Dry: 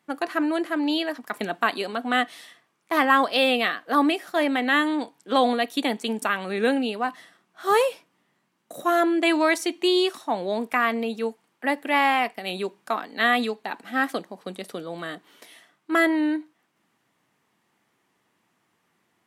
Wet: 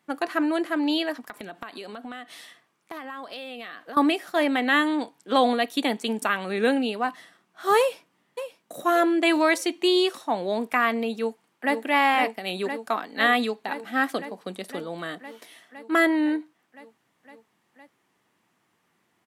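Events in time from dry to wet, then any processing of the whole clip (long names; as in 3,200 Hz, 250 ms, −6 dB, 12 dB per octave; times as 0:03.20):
0:01.26–0:03.97: downward compressor 8 to 1, threshold −34 dBFS
0:07.79–0:08.84: delay throw 580 ms, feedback 40%, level −11 dB
0:11.16–0:11.76: delay throw 510 ms, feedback 80%, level −6.5 dB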